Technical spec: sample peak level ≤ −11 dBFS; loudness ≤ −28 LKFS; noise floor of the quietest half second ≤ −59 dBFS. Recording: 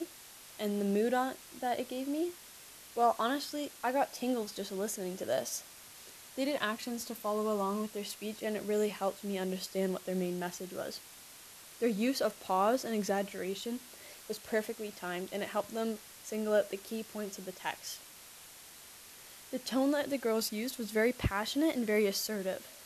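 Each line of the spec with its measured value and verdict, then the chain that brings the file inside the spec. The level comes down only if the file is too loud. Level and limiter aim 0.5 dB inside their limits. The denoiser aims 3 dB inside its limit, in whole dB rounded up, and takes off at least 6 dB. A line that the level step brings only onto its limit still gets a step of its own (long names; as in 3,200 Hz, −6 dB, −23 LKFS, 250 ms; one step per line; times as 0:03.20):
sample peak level −16.0 dBFS: in spec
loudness −34.5 LKFS: in spec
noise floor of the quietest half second −53 dBFS: out of spec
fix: broadband denoise 9 dB, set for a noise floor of −53 dBFS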